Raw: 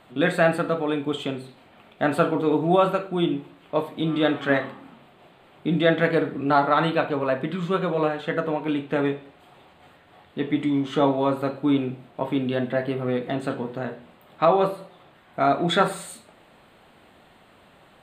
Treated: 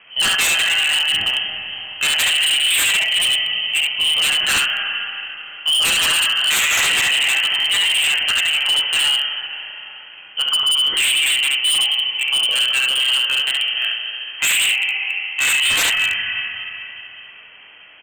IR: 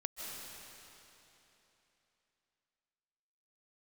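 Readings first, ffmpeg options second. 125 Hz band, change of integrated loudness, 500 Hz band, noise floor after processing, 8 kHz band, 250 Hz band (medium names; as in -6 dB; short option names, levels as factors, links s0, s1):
under -15 dB, +8.5 dB, -17.0 dB, -41 dBFS, no reading, under -20 dB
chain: -filter_complex "[0:a]bandreject=f=1100:w=22,aecho=1:1:35|69:0.141|0.668,lowpass=f=2800:t=q:w=0.5098,lowpass=f=2800:t=q:w=0.6013,lowpass=f=2800:t=q:w=0.9,lowpass=f=2800:t=q:w=2.563,afreqshift=-3300,asplit=2[s0][s1];[1:a]atrim=start_sample=2205[s2];[s1][s2]afir=irnorm=-1:irlink=0,volume=0.944[s3];[s0][s3]amix=inputs=2:normalize=0,aeval=exprs='0.211*(abs(mod(val(0)/0.211+3,4)-2)-1)':c=same,volume=1.26"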